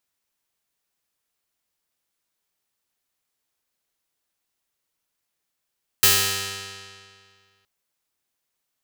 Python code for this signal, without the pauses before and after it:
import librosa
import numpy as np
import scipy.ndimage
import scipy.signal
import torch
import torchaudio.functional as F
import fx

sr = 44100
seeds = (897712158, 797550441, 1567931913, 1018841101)

y = fx.pluck(sr, length_s=1.62, note=43, decay_s=2.1, pick=0.34, brightness='bright')